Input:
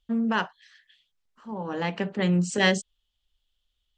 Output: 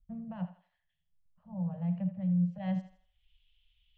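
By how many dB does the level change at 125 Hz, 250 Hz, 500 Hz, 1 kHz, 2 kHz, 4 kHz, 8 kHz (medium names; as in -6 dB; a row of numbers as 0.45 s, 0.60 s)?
-3.0 dB, -5.5 dB, -19.0 dB, -17.5 dB, under -25 dB, under -30 dB, under -40 dB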